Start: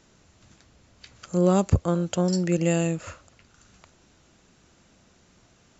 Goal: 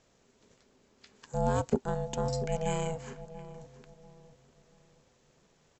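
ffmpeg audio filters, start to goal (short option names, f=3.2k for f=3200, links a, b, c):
-filter_complex "[0:a]aeval=exprs='val(0)*sin(2*PI*320*n/s)':c=same,asplit=2[a][b];[b]adelay=688,lowpass=f=930:p=1,volume=-13dB,asplit=2[c][d];[d]adelay=688,lowpass=f=930:p=1,volume=0.36,asplit=2[e][f];[f]adelay=688,lowpass=f=930:p=1,volume=0.36,asplit=2[g][h];[h]adelay=688,lowpass=f=930:p=1,volume=0.36[i];[a][c][e][g][i]amix=inputs=5:normalize=0,volume=-5.5dB"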